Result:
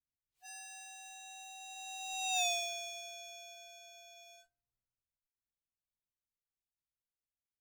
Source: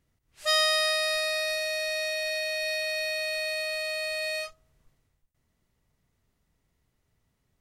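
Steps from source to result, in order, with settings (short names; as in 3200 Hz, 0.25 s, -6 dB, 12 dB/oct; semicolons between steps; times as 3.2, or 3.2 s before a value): inharmonic rescaling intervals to 116%; Doppler pass-by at 2.41, 19 m/s, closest 1.9 m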